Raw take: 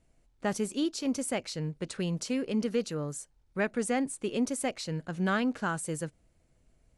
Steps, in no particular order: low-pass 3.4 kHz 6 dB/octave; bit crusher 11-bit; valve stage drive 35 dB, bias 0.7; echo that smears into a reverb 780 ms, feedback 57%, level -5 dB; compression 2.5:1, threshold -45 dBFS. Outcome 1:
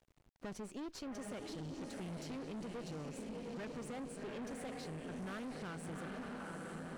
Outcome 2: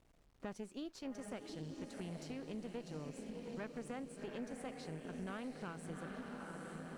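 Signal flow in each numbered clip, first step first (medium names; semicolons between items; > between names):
echo that smears into a reverb > valve stage > bit crusher > low-pass > compression; echo that smears into a reverb > compression > bit crusher > valve stage > low-pass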